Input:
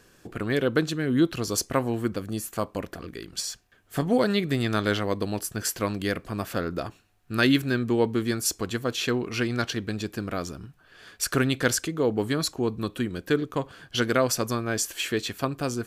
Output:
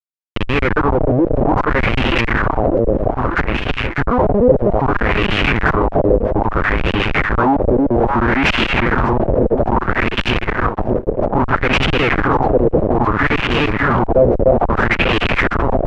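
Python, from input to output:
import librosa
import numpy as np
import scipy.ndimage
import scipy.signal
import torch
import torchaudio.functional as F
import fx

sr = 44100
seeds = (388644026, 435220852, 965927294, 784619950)

y = fx.dereverb_blind(x, sr, rt60_s=0.78)
y = fx.schmitt(y, sr, flips_db=-22.5)
y = fx.echo_alternate(y, sr, ms=299, hz=1300.0, feedback_pct=67, wet_db=-4.0)
y = fx.fuzz(y, sr, gain_db=51.0, gate_db=-59.0)
y = fx.filter_lfo_lowpass(y, sr, shape='sine', hz=0.61, low_hz=520.0, high_hz=2900.0, q=4.1)
y = y * librosa.db_to_amplitude(-1.5)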